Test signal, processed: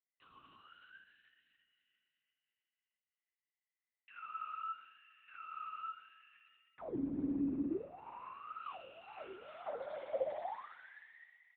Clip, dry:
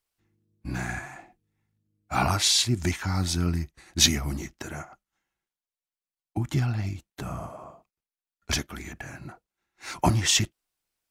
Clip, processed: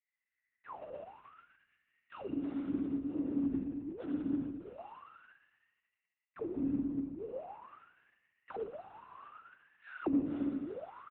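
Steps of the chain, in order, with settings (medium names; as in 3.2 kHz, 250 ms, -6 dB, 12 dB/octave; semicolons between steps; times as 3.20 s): bit-reversed sample order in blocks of 128 samples; feedback delay 285 ms, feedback 47%, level -18 dB; spring tank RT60 1.6 s, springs 57 ms, chirp 30 ms, DRR -5 dB; LPC vocoder at 8 kHz whisper; auto-wah 280–2000 Hz, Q 21, down, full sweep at -22 dBFS; trim +8 dB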